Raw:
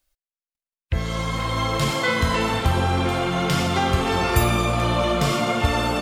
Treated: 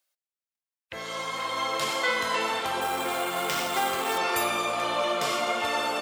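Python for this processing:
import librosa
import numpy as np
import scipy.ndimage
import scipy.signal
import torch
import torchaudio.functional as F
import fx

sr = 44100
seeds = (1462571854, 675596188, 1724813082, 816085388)

y = scipy.signal.sosfilt(scipy.signal.butter(2, 470.0, 'highpass', fs=sr, output='sos'), x)
y = fx.sample_hold(y, sr, seeds[0], rate_hz=11000.0, jitter_pct=0, at=(2.81, 4.18))
y = y * librosa.db_to_amplitude(-3.0)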